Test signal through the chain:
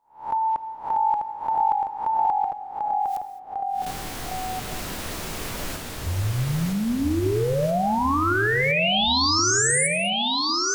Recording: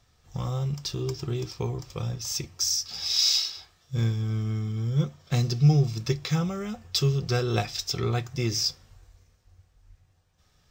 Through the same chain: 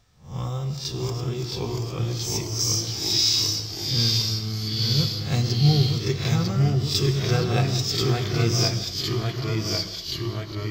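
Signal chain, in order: reverse spectral sustain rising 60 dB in 0.38 s; gated-style reverb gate 240 ms flat, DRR 9 dB; ever faster or slower copies 620 ms, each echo -1 st, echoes 3

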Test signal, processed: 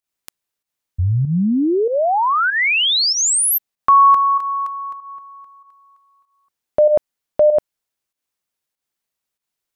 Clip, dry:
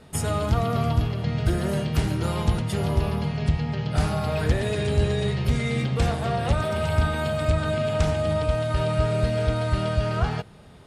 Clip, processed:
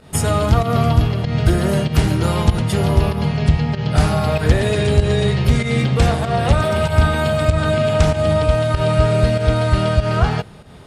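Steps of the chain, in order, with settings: volume shaper 96 bpm, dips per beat 1, -10 dB, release 136 ms; trim +8 dB

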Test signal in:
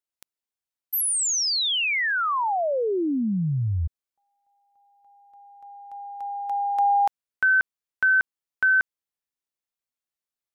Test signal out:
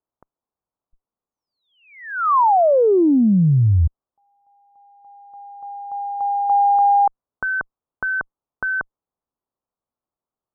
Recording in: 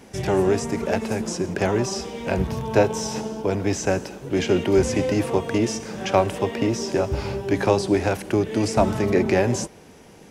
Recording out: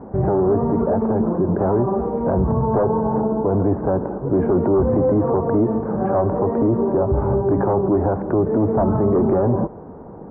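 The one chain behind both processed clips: Chebyshev shaper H 3 -18 dB, 5 -8 dB, 8 -35 dB, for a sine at -3.5 dBFS; steep low-pass 1.2 kHz 36 dB/octave; peak limiter -13.5 dBFS; trim +2.5 dB

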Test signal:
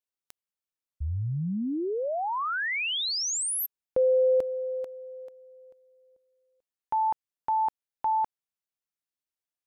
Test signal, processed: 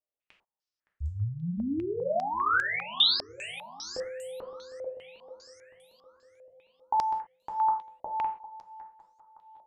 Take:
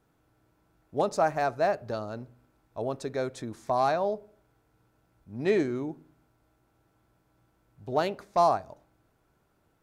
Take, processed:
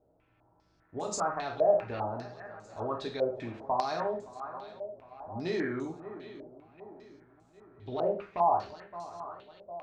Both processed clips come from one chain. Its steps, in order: on a send: shuffle delay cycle 755 ms, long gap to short 3:1, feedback 46%, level -18 dB; on the sum: peak limiter -22 dBFS; dynamic bell 590 Hz, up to -4 dB, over -46 dBFS, Q 3.5; gated-style reverb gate 150 ms falling, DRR 0 dB; step-sequenced low-pass 5 Hz 610–7300 Hz; trim -5 dB

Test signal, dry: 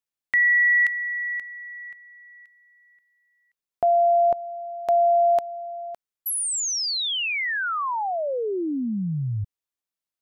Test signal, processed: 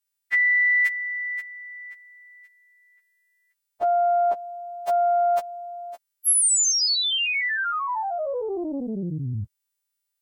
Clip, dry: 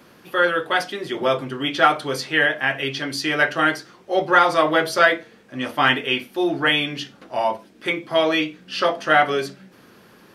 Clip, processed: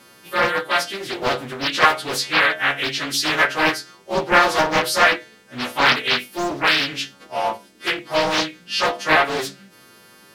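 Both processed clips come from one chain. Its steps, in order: partials quantised in pitch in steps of 2 st; loudspeaker Doppler distortion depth 0.66 ms; trim -1 dB

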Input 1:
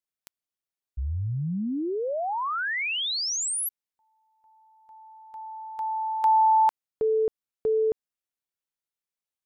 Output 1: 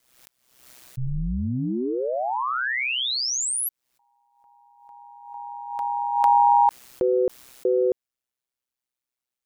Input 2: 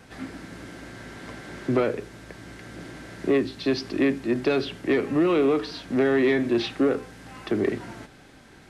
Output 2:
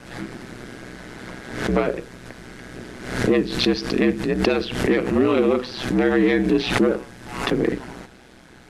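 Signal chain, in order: ring modulator 63 Hz; swell ahead of each attack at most 72 dB/s; trim +5.5 dB

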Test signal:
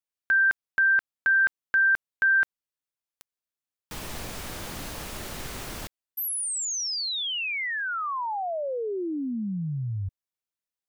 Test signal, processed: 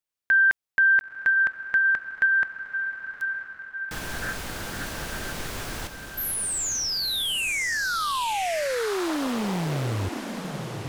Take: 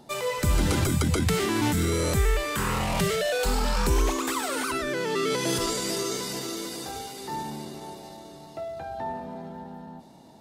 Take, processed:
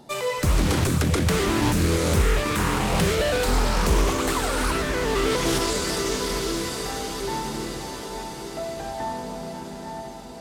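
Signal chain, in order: echo that smears into a reverb 961 ms, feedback 59%, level -7.5 dB; loudspeaker Doppler distortion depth 0.64 ms; trim +2.5 dB

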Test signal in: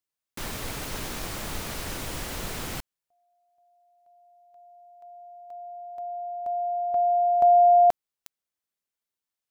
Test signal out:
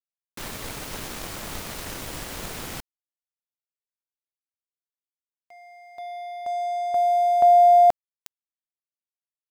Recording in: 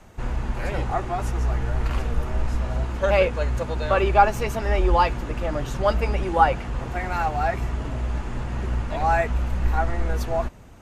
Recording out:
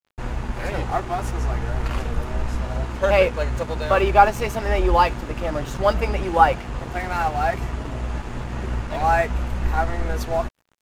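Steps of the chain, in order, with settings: bass shelf 87 Hz -4 dB; crossover distortion -41.5 dBFS; trim +3 dB

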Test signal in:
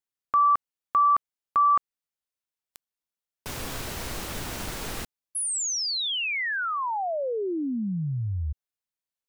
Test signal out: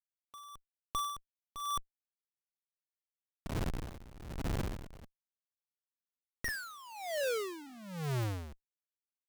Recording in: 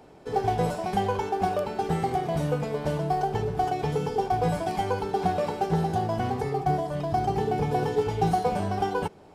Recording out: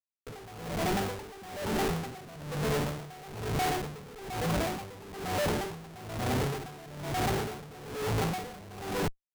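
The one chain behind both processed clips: Gaussian low-pass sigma 6 samples; de-hum 304.7 Hz, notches 6; Schmitt trigger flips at -37 dBFS; logarithmic tremolo 1.1 Hz, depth 19 dB

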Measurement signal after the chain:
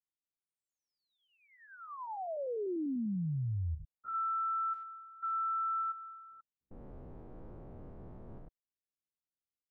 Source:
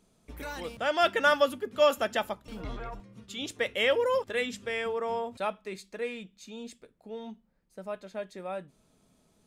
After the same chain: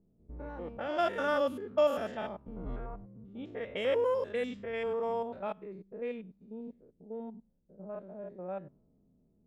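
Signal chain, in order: spectrogram pixelated in time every 100 ms; level-controlled noise filter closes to 390 Hz, open at -27 dBFS; tilt shelf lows +5 dB, about 1.2 kHz; trim -4 dB

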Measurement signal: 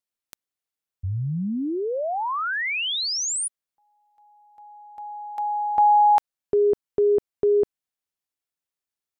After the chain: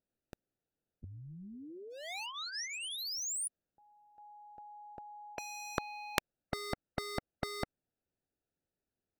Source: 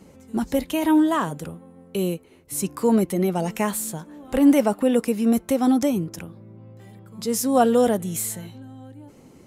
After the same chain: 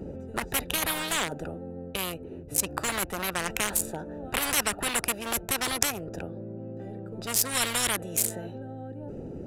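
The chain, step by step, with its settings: local Wiener filter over 41 samples; spectrum-flattening compressor 10:1; trim +5 dB

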